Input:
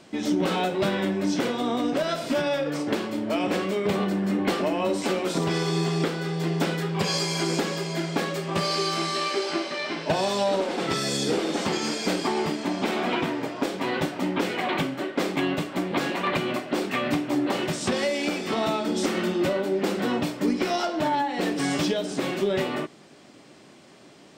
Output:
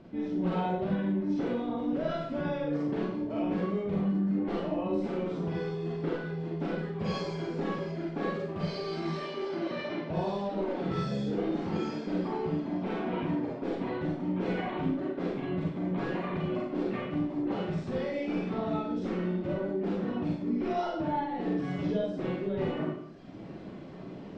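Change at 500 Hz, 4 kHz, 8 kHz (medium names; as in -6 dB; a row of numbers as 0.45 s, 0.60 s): -6.5 dB, -17.0 dB, under -25 dB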